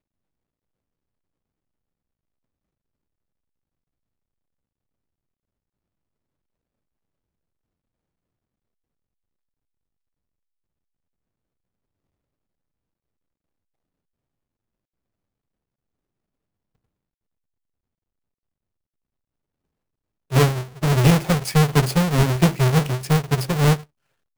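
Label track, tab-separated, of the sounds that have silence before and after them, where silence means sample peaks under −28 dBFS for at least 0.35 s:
20.320000	23.760000	sound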